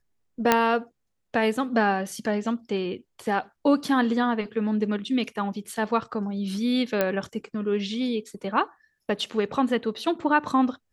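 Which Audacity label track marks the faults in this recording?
0.520000	0.520000	pop -3 dBFS
7.010000	7.010000	pop -9 dBFS

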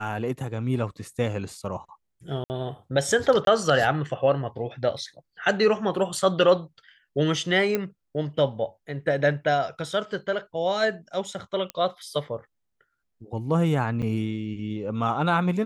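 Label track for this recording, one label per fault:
2.440000	2.500000	dropout 59 ms
3.450000	3.470000	dropout 22 ms
7.750000	7.750000	pop -11 dBFS
11.700000	11.700000	pop -15 dBFS
14.020000	14.030000	dropout 6.8 ms

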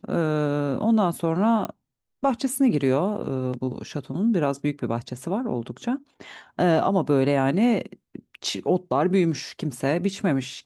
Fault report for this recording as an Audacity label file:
1.650000	1.650000	pop -15 dBFS

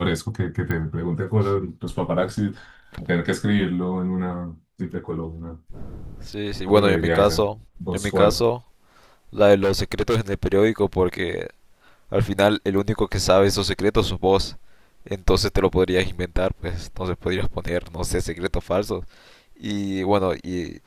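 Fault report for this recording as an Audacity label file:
0.710000	0.710000	pop -14 dBFS
9.620000	10.540000	clipped -16 dBFS

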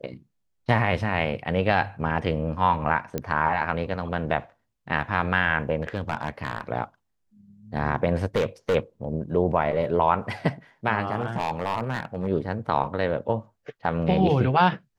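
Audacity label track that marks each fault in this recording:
3.180000	3.180000	pop -13 dBFS
5.810000	6.610000	clipped -18.5 dBFS
8.360000	8.760000	clipped -18.5 dBFS
11.200000	12.280000	clipped -20.5 dBFS

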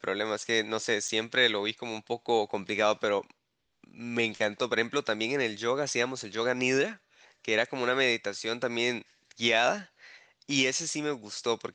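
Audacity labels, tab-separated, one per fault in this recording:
1.080000	1.090000	dropout 5.8 ms

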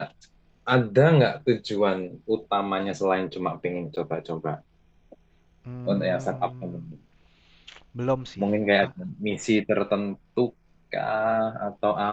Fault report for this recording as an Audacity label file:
3.960000	3.970000	dropout 8.7 ms

